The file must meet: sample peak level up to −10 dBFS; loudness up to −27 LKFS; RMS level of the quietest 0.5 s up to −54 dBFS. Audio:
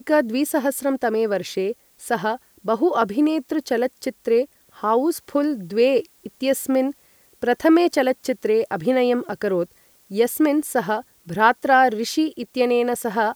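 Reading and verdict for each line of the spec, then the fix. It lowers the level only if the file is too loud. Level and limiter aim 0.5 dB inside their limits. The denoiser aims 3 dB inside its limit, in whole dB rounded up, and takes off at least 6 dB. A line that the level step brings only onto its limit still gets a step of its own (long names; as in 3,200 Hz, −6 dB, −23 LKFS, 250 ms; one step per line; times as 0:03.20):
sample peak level −3.0 dBFS: out of spec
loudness −21.0 LKFS: out of spec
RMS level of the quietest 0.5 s −56 dBFS: in spec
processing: level −6.5 dB
brickwall limiter −10.5 dBFS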